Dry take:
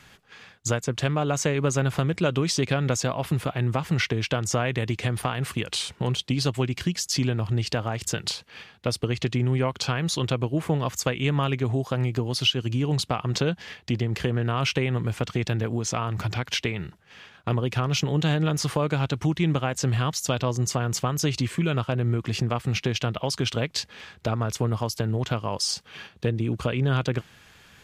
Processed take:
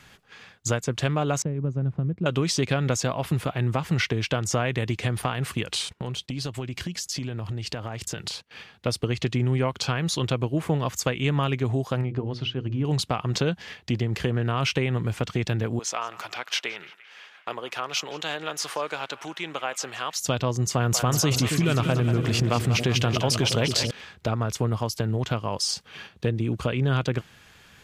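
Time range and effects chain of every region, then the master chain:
1.42–2.26 G.711 law mismatch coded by A + band-pass 140 Hz, Q 0.91
5.89–8.51 gate -44 dBFS, range -14 dB + compressor, threshold -27 dBFS
12.01–12.85 tape spacing loss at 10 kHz 31 dB + notches 60/120/180/240/300/360/420/480/540/600 Hz
15.79–20.16 HPF 590 Hz + narrowing echo 0.172 s, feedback 67%, band-pass 1800 Hz, level -15.5 dB
20.75–23.91 high shelf 8100 Hz +5 dB + split-band echo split 480 Hz, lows 0.274 s, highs 0.189 s, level -8.5 dB + fast leveller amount 50%
whole clip: dry

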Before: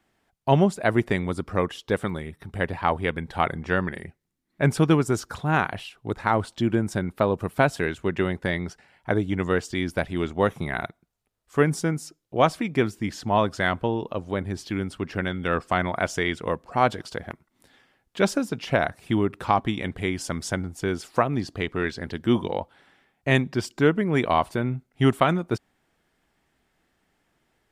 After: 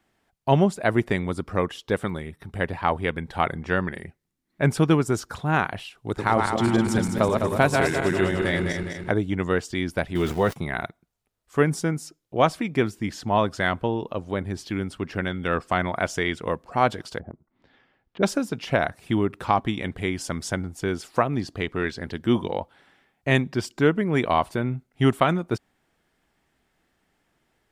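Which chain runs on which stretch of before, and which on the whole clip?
5.95–9.11 regenerating reverse delay 0.103 s, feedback 70%, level -3.5 dB + bell 8300 Hz +6 dB 1.8 oct
10.15–10.56 sample gate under -39 dBFS + notch comb 280 Hz + fast leveller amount 50%
17.19–18.23 treble ducked by the level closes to 510 Hz, closed at -38 dBFS + air absorption 200 m
whole clip: dry

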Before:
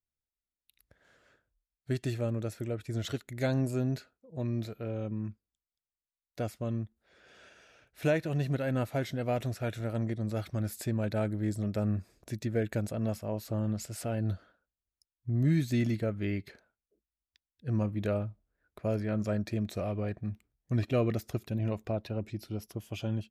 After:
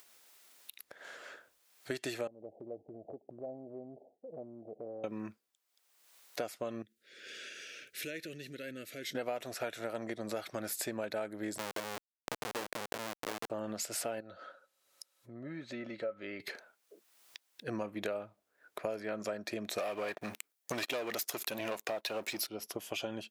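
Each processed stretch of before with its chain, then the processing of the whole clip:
2.27–5.04 steep low-pass 810 Hz 96 dB/oct + compressor 10:1, threshold -44 dBFS
6.82–9.15 compressor 2.5:1, threshold -46 dBFS + Butterworth band-stop 880 Hz, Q 0.61
11.58–13.5 reverse delay 0.476 s, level -12 dB + Schmitt trigger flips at -31.5 dBFS
14.2–16.4 treble ducked by the level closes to 1800 Hz, closed at -23.5 dBFS + compressor 2:1, threshold -51 dBFS + small resonant body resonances 550/1300/3900 Hz, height 13 dB, ringing for 85 ms
19.78–22.47 tilt +2.5 dB/oct + sample leveller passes 3 + compressor 2:1, threshold -30 dBFS
whole clip: upward compressor, threshold -51 dBFS; HPF 470 Hz 12 dB/oct; compressor 6:1, threshold -45 dBFS; gain +10.5 dB

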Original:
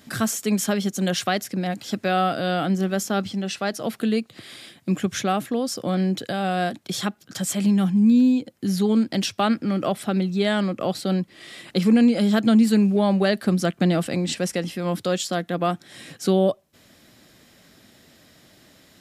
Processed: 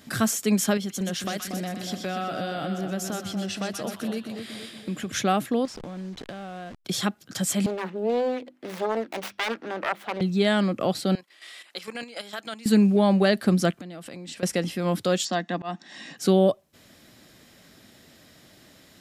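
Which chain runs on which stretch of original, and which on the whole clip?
0.77–5.12 compressor 3:1, threshold -29 dBFS + split-band echo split 1000 Hz, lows 0.235 s, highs 0.125 s, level -6 dB
5.65–6.85 level-crossing sampler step -31 dBFS + compressor 16:1, threshold -32 dBFS + air absorption 65 m
7.66–10.21 self-modulated delay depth 0.93 ms + three-band isolator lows -20 dB, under 380 Hz, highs -14 dB, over 3500 Hz + notches 50/100/150/200/250/300/350 Hz
11.15–12.66 HPF 810 Hz + level quantiser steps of 11 dB
13.75–14.43 compressor 8:1, threshold -34 dBFS + low shelf 240 Hz -5.5 dB
15.25–16.18 Chebyshev band-pass 210–6500 Hz, order 3 + comb 1.1 ms, depth 51% + auto swell 0.173 s
whole clip: dry

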